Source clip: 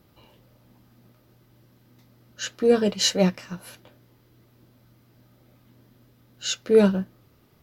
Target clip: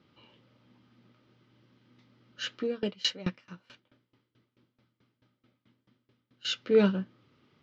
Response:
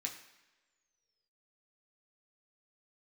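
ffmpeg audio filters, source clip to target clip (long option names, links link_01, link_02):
-filter_complex "[0:a]highpass=120,equalizer=frequency=260:width_type=q:width=4:gain=3,equalizer=frequency=690:width_type=q:width=4:gain=-6,equalizer=frequency=1300:width_type=q:width=4:gain=4,equalizer=frequency=2200:width_type=q:width=4:gain=4,equalizer=frequency=3100:width_type=q:width=4:gain=6,lowpass=frequency=5200:width=0.5412,lowpass=frequency=5200:width=1.3066,asettb=1/sr,asplit=3[link_01][link_02][link_03];[link_01]atrim=end=2.614[link_04];[link_02]atrim=start=2.61:end=6.45,asetpts=PTS-STARTPTS,afade=type=in:duration=0.004:curve=qsin,afade=type=out:start_time=3.836:duration=0.004:curve=qsin,aeval=exprs='val(0)*pow(10,-23*if(lt(mod(4.6*n/s,1),2*abs(4.6)/1000),1-mod(4.6*n/s,1)/(2*abs(4.6)/1000),(mod(4.6*n/s,1)-2*abs(4.6)/1000)/(1-2*abs(4.6)/1000))/20)':channel_layout=same[link_05];[link_03]atrim=start=6.446[link_06];[link_04][link_05]acrossfade=duration=0.004:curve1=hsin:curve2=qsin[link_07];[link_07][link_06]acrossfade=duration=0.004:curve1=qsin:curve2=hsin,volume=-5.5dB"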